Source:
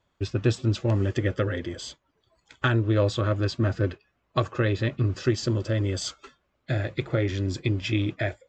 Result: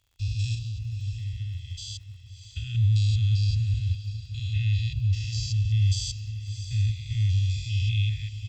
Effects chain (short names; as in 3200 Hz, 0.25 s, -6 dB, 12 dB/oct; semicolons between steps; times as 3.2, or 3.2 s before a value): stepped spectrum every 0.2 s; Chebyshev band-stop 110–2700 Hz, order 4; comb 1.5 ms, depth 51%; 0.54–2.75 compressor, threshold -34 dBFS, peak gain reduction 10.5 dB; crackle 86/s -56 dBFS; diffused feedback echo 0.652 s, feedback 48%, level -11 dB; gain +3.5 dB